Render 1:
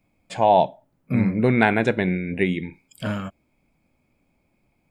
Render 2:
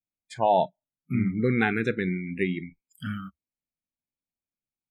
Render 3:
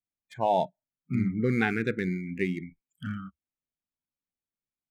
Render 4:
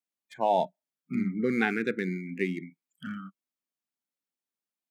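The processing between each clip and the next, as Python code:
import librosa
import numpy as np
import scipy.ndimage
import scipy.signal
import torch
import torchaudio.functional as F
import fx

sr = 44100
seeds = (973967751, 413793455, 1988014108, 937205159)

y1 = fx.noise_reduce_blind(x, sr, reduce_db=29)
y1 = y1 * librosa.db_to_amplitude(-5.0)
y2 = fx.wiener(y1, sr, points=9)
y2 = fx.peak_eq(y2, sr, hz=700.0, db=-2.0, octaves=1.5)
y2 = y2 * librosa.db_to_amplitude(-1.5)
y3 = scipy.signal.sosfilt(scipy.signal.butter(4, 180.0, 'highpass', fs=sr, output='sos'), y2)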